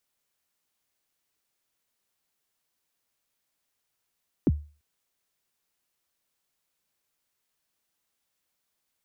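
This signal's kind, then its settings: kick drum length 0.34 s, from 380 Hz, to 74 Hz, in 36 ms, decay 0.35 s, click off, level -14.5 dB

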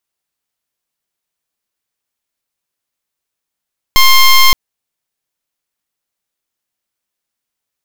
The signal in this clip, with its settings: pulse 1060 Hz, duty 12% -5.5 dBFS 0.57 s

